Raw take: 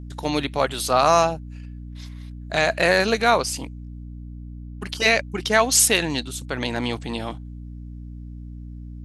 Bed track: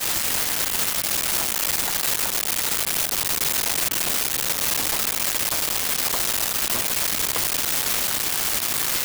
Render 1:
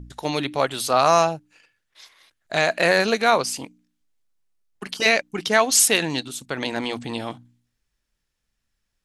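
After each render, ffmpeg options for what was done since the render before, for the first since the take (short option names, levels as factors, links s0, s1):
-af "bandreject=f=60:t=h:w=4,bandreject=f=120:t=h:w=4,bandreject=f=180:t=h:w=4,bandreject=f=240:t=h:w=4,bandreject=f=300:t=h:w=4"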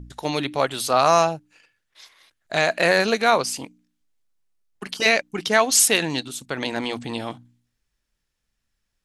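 -af anull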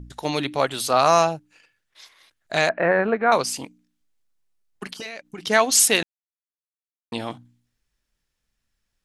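-filter_complex "[0:a]asettb=1/sr,asplit=3[s0][s1][s2];[s0]atrim=end=2.694[s3];[s1]atrim=start=2.69:end=3.32,asetpts=PTS-STARTPTS,afade=t=in:d=0.004:c=qsin,afade=t=out:st=0.626:d=0.004:c=qsin,lowpass=f=1800:w=0.5412,lowpass=f=1800:w=1.3066[s4];[s2]atrim=start=3.316[s5];[s3][s4]acrossfade=d=0.004:c1=hsin:c2=qsin[s6];[s6][s5]acrossfade=d=0.004:c1=qsin:c2=hsin,asettb=1/sr,asplit=3[s7][s8][s9];[s7]atrim=end=4.894[s10];[s8]atrim=start=4.89:end=5.47,asetpts=PTS-STARTPTS,afade=t=in:d=0.004:c=qsin,afade=t=out:st=0.576:d=0.004:c=qsin,acompressor=threshold=0.0282:ratio=8:attack=3.2:release=140:knee=1:detection=peak[s11];[s9]atrim=start=5.466[s12];[s10][s11]acrossfade=d=0.004:c1=hsin:c2=qsin[s13];[s13][s12]acrossfade=d=0.004:c1=qsin:c2=hsin,asplit=3[s14][s15][s16];[s14]atrim=end=6.03,asetpts=PTS-STARTPTS,afade=t=out:st=6.026:d=0.004:c=hsin[s17];[s15]atrim=start=6.03:end=7.12,asetpts=PTS-STARTPTS,volume=0[s18];[s16]atrim=start=7.12,asetpts=PTS-STARTPTS,afade=t=in:d=0.004:c=hsin[s19];[s17][s18][s19]concat=n=3:v=0:a=1"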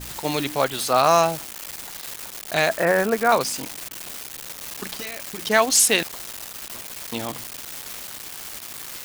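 -filter_complex "[1:a]volume=0.237[s0];[0:a][s0]amix=inputs=2:normalize=0"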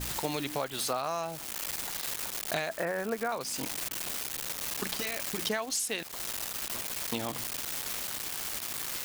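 -af "acompressor=threshold=0.0398:ratio=20"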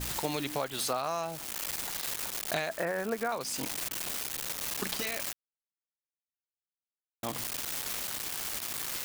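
-filter_complex "[0:a]asplit=3[s0][s1][s2];[s0]atrim=end=5.33,asetpts=PTS-STARTPTS,afade=t=out:st=5.326:d=0.004:c=hsin[s3];[s1]atrim=start=5.33:end=7.23,asetpts=PTS-STARTPTS,volume=0[s4];[s2]atrim=start=7.23,asetpts=PTS-STARTPTS,afade=t=in:d=0.004:c=hsin[s5];[s3][s4][s5]concat=n=3:v=0:a=1"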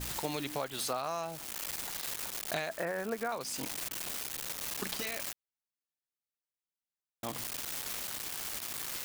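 -af "volume=0.708"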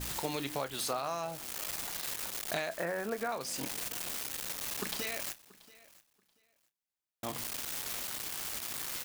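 -filter_complex "[0:a]asplit=2[s0][s1];[s1]adelay=29,volume=0.224[s2];[s0][s2]amix=inputs=2:normalize=0,aecho=1:1:682|1364:0.0841|0.016"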